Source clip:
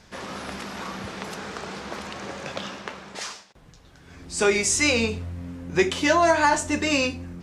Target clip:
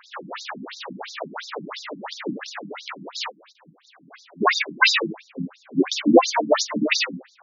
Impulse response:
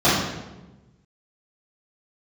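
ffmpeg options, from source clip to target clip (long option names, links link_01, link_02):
-filter_complex "[0:a]lowshelf=frequency=280:gain=-2.5,aphaser=in_gain=1:out_gain=1:delay=1.8:decay=0.66:speed=1.3:type=triangular,asplit=3[link_01][link_02][link_03];[link_02]asetrate=22050,aresample=44100,atempo=2,volume=-7dB[link_04];[link_03]asetrate=33038,aresample=44100,atempo=1.33484,volume=-2dB[link_05];[link_01][link_04][link_05]amix=inputs=3:normalize=0,afftfilt=real='re*between(b*sr/1024,210*pow(5200/210,0.5+0.5*sin(2*PI*2.9*pts/sr))/1.41,210*pow(5200/210,0.5+0.5*sin(2*PI*2.9*pts/sr))*1.41)':imag='im*between(b*sr/1024,210*pow(5200/210,0.5+0.5*sin(2*PI*2.9*pts/sr))/1.41,210*pow(5200/210,0.5+0.5*sin(2*PI*2.9*pts/sr))*1.41)':win_size=1024:overlap=0.75,volume=5.5dB"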